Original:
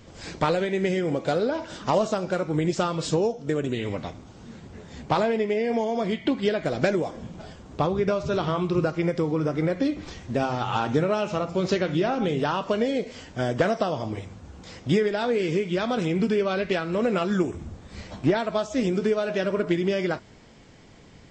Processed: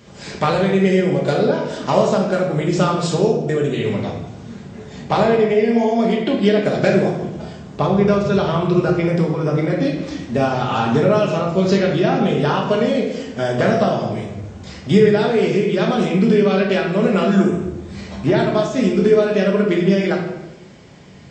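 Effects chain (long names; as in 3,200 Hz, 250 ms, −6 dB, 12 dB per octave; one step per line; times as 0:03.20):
high-pass filter 73 Hz
convolution reverb RT60 0.95 s, pre-delay 5 ms, DRR −1 dB
level +3.5 dB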